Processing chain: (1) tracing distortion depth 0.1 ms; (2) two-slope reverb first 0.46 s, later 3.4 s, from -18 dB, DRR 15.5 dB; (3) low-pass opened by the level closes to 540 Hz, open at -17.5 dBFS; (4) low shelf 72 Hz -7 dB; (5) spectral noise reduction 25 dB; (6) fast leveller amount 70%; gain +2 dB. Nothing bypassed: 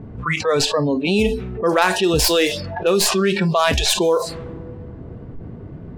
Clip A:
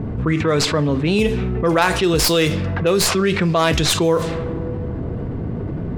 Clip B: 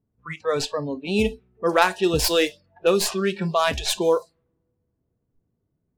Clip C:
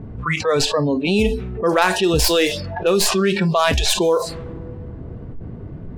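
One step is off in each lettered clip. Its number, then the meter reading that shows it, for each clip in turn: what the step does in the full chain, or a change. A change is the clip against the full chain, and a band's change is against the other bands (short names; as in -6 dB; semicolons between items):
5, 125 Hz band +6.0 dB; 6, crest factor change +4.5 dB; 4, momentary loudness spread change -2 LU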